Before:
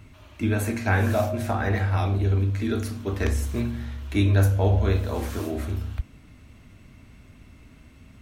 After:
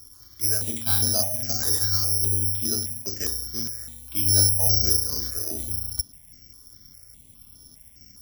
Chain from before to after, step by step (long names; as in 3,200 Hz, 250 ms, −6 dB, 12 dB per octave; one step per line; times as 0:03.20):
0:03.02–0:04.26: low-shelf EQ 120 Hz −9.5 dB
bad sample-rate conversion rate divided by 8×, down filtered, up zero stuff
step-sequenced phaser 4.9 Hz 650–7,600 Hz
level −7.5 dB